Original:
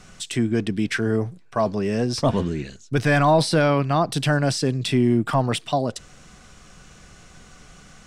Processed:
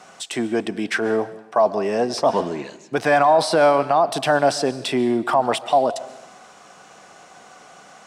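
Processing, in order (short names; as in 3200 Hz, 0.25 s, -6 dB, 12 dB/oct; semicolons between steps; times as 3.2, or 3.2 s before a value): HPF 270 Hz 12 dB/oct; bell 780 Hz +12.5 dB 1.2 oct; limiter -8 dBFS, peak gain reduction 8 dB; digital reverb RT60 0.87 s, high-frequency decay 1×, pre-delay 95 ms, DRR 16 dB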